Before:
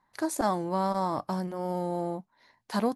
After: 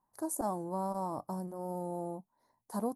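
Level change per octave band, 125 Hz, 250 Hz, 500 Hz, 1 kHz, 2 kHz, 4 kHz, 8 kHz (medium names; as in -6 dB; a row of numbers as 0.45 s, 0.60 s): -7.0 dB, -7.0 dB, -7.0 dB, -7.5 dB, under -15 dB, under -15 dB, -2.5 dB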